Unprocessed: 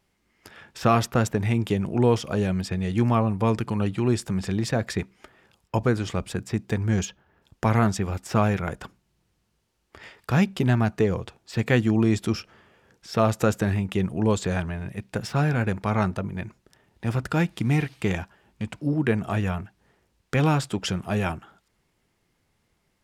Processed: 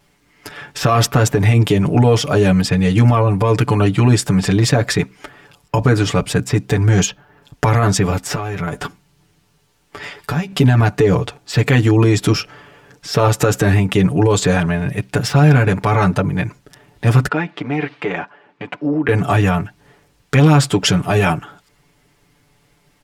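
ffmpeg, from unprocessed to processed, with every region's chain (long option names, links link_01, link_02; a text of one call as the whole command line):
ffmpeg -i in.wav -filter_complex "[0:a]asettb=1/sr,asplit=3[link_01][link_02][link_03];[link_01]atrim=end=8.334[link_04];[link_02]atrim=start=8.33:end=10.52,asetpts=PTS-STARTPTS,afade=type=in:duration=0.004:curve=qsin,afade=type=out:start_time=2.186:duration=0.004:curve=qsin,acompressor=threshold=-31dB:ratio=12:attack=3.2:release=140:knee=1:detection=peak,asplit=2[link_05][link_06];[link_06]adelay=12,volume=-7dB[link_07];[link_05][link_07]amix=inputs=2:normalize=0,atrim=end_sample=96579[link_08];[link_03]atrim=start=10.516[link_09];[link_04][link_08]acrossfade=duration=0.004:curve1=hsin:curve2=qsin[link_10];[link_10][link_09]acrossfade=duration=0.004:curve1=qsin:curve2=hsin,asettb=1/sr,asplit=3[link_11][link_12][link_13];[link_11]atrim=end=17.284[link_14];[link_12]atrim=start=17.28:end=19.09,asetpts=PTS-STARTPTS,afade=type=in:duration=0.004:curve=qsin,afade=type=out:start_time=1.806:duration=0.004:curve=qsin,acompressor=threshold=-24dB:ratio=6:attack=3.2:release=140:knee=1:detection=peak,highpass=320,lowpass=2300[link_15];[link_13]atrim=start=19.086[link_16];[link_14][link_15]acrossfade=duration=0.004:curve1=hsin:curve2=qsin[link_17];[link_17][link_16]acrossfade=duration=0.004:curve1=qsin:curve2=hsin,aecho=1:1:6.9:0.95,alimiter=level_in=14dB:limit=-1dB:release=50:level=0:latency=1,volume=-3dB" out.wav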